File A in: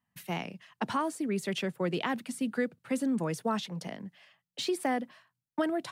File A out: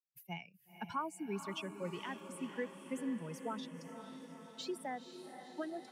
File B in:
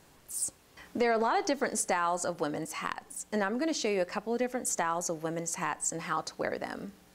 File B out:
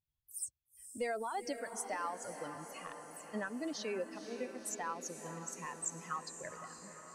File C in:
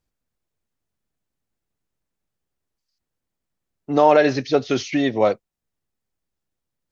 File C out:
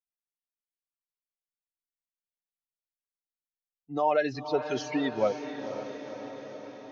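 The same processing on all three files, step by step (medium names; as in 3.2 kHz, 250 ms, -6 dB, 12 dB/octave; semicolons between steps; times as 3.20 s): expander on every frequency bin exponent 2; bass shelf 120 Hz -5.5 dB; gain riding within 4 dB 2 s; echo that smears into a reverb 501 ms, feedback 67%, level -9.5 dB; trim -6.5 dB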